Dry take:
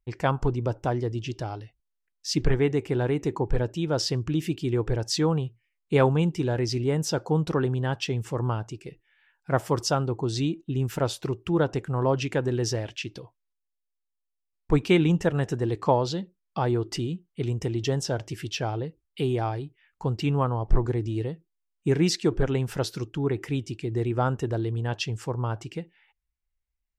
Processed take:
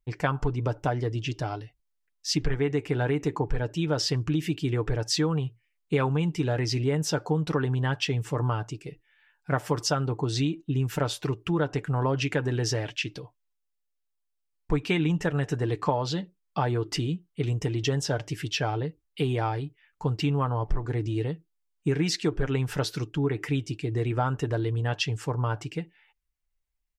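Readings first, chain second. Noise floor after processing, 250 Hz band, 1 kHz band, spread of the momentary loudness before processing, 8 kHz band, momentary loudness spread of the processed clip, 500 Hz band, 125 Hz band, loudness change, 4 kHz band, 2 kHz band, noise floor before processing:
-78 dBFS, -2.0 dB, -1.0 dB, 10 LU, 0.0 dB, 7 LU, -3.0 dB, -0.5 dB, -1.0 dB, +1.0 dB, +2.0 dB, -82 dBFS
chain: dynamic bell 1.9 kHz, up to +5 dB, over -44 dBFS, Q 0.76; comb 6.8 ms, depth 46%; compression 4:1, threshold -22 dBFS, peak gain reduction 10.5 dB

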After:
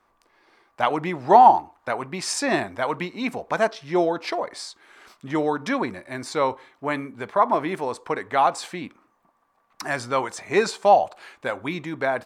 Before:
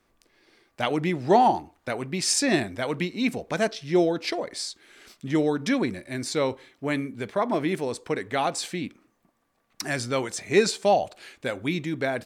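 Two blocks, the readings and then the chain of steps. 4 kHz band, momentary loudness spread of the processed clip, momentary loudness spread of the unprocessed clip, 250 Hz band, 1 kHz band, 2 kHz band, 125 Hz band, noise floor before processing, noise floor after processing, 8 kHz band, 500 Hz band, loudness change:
-3.0 dB, 14 LU, 12 LU, -2.5 dB, +7.5 dB, +2.0 dB, -4.0 dB, -70 dBFS, -67 dBFS, -4.0 dB, +2.0 dB, +3.0 dB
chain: peaking EQ 1 kHz +15 dB 1.5 oct; trim -4.5 dB

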